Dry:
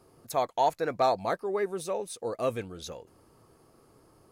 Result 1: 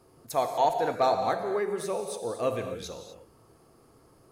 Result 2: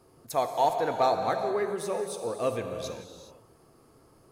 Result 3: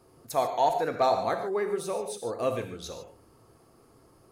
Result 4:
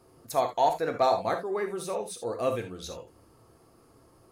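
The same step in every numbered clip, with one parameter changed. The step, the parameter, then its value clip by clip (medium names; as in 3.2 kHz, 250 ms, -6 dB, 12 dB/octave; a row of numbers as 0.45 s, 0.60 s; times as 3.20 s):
gated-style reverb, gate: 280 ms, 450 ms, 170 ms, 100 ms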